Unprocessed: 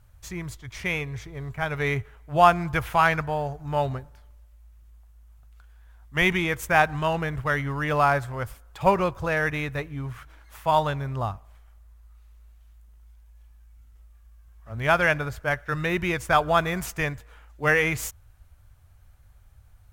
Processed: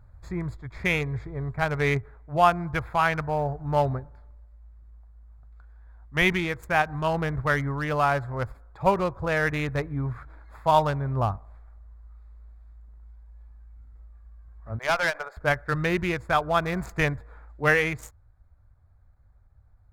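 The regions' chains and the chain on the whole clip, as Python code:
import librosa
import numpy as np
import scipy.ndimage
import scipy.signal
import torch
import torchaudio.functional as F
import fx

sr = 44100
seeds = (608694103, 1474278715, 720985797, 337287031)

y = fx.chain(x, sr, fx.highpass(hz=540.0, slope=24),
    fx.tube_stage(drive_db=20.0, bias=0.35), at=(14.79, 15.37))
y = fx.wiener(y, sr, points=15)
y = fx.rider(y, sr, range_db=4, speed_s=0.5)
y = fx.end_taper(y, sr, db_per_s=340.0)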